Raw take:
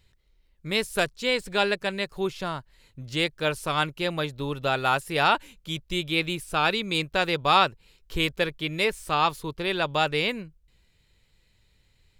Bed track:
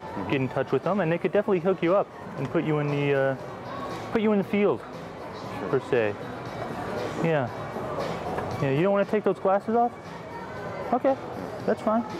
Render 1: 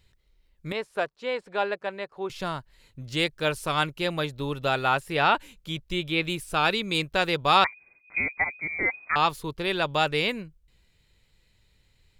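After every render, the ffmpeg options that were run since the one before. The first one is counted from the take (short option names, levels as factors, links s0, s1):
-filter_complex "[0:a]asettb=1/sr,asplit=3[s0][s1][s2];[s0]atrim=end=0.724[s3];[s1]atrim=start=0.72:end=2.3,asetpts=PTS-STARTPTS,afade=t=in:d=0.004:c=qsin,afade=t=out:st=1.576:d=0.004:c=qsin,bandpass=f=790:t=q:w=0.87[s4];[s2]atrim=start=2.296[s5];[s3][s4]acrossfade=d=0.004:c1=hsin:c2=qsin[s6];[s6][s5]acrossfade=d=0.004:c1=qsin:c2=hsin,asettb=1/sr,asplit=3[s7][s8][s9];[s7]atrim=end=4.794[s10];[s8]atrim=start=4.79:end=6.25,asetpts=PTS-STARTPTS,afade=t=in:d=0.004:c=qsin,afade=t=out:st=1.456:d=0.004:c=qsin,acrossover=split=4100[s11][s12];[s12]acompressor=threshold=0.00562:ratio=4:attack=1:release=60[s13];[s11][s13]amix=inputs=2:normalize=0[s14];[s9]atrim=start=6.246[s15];[s10][s14]acrossfade=d=0.004:c1=hsin:c2=qsin[s16];[s16][s15]acrossfade=d=0.004:c1=qsin:c2=hsin,asettb=1/sr,asplit=3[s17][s18][s19];[s17]atrim=end=7.644[s20];[s18]atrim=start=7.64:end=9.16,asetpts=PTS-STARTPTS,afade=t=in:d=0.004:c=qsin,afade=t=out:st=1.516:d=0.004:c=qsin,lowpass=f=2100:t=q:w=0.5098,lowpass=f=2100:t=q:w=0.6013,lowpass=f=2100:t=q:w=0.9,lowpass=f=2100:t=q:w=2.563,afreqshift=-2500[s21];[s19]atrim=start=9.156[s22];[s20][s21]acrossfade=d=0.004:c1=hsin:c2=qsin[s23];[s23][s22]acrossfade=d=0.004:c1=qsin:c2=hsin"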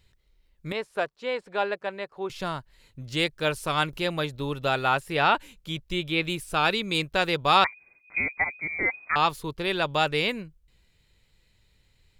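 -filter_complex "[0:a]asettb=1/sr,asplit=3[s0][s1][s2];[s0]atrim=end=3.934[s3];[s1]atrim=start=3.93:end=4.36,asetpts=PTS-STARTPTS,afade=t=in:d=0.004:c=qsin,afade=t=out:st=0.426:d=0.004:c=qsin,acompressor=mode=upward:threshold=0.0251:ratio=2.5:attack=3.2:release=140:knee=2.83:detection=peak[s4];[s2]atrim=start=4.356[s5];[s3][s4]acrossfade=d=0.004:c1=hsin:c2=qsin[s6];[s6][s5]acrossfade=d=0.004:c1=qsin:c2=hsin"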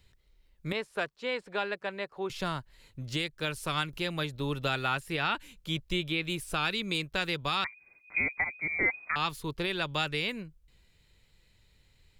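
-filter_complex "[0:a]acrossover=split=340|1200[s0][s1][s2];[s1]acompressor=threshold=0.0158:ratio=6[s3];[s0][s3][s2]amix=inputs=3:normalize=0,alimiter=limit=0.119:level=0:latency=1:release=345"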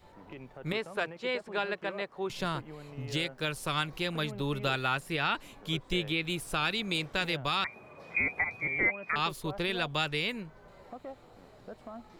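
-filter_complex "[1:a]volume=0.0891[s0];[0:a][s0]amix=inputs=2:normalize=0"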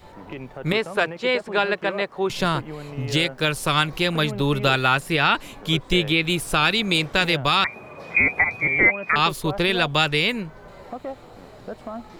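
-af "volume=3.55"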